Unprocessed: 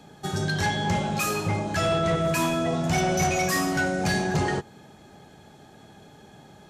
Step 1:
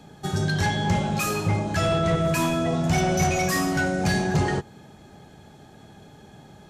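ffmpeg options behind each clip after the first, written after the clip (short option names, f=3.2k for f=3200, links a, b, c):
-af "lowshelf=f=170:g=6"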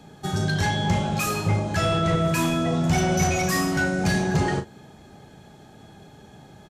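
-filter_complex "[0:a]asplit=2[a][b];[b]adelay=37,volume=-9.5dB[c];[a][c]amix=inputs=2:normalize=0"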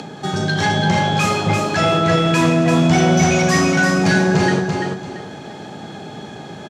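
-af "acompressor=mode=upward:threshold=-30dB:ratio=2.5,highpass=160,lowpass=6.3k,aecho=1:1:339|678|1017|1356:0.596|0.161|0.0434|0.0117,volume=7dB"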